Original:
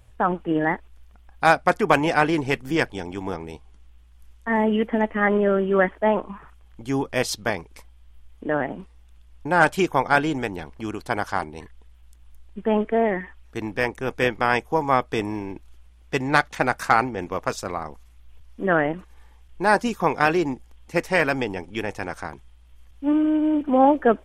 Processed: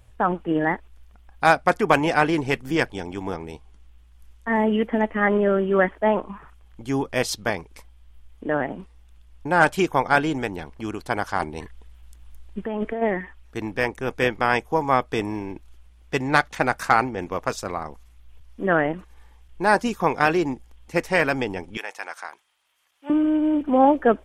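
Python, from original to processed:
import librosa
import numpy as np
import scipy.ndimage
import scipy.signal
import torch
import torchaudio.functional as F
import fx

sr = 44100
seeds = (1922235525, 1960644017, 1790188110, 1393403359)

y = fx.over_compress(x, sr, threshold_db=-25.0, ratio=-1.0, at=(11.39, 13.01), fade=0.02)
y = fx.highpass(y, sr, hz=860.0, slope=12, at=(21.77, 23.1))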